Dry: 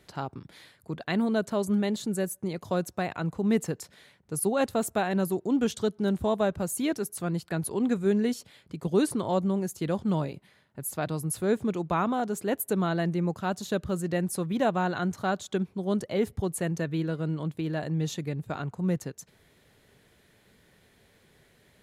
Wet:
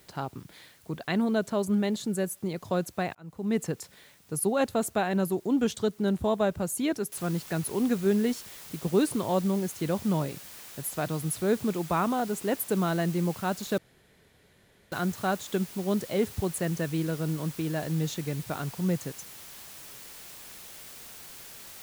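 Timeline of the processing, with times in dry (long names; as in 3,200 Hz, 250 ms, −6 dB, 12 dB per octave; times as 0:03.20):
0:03.15–0:03.68: fade in
0:07.12: noise floor change −61 dB −46 dB
0:13.78–0:14.92: fill with room tone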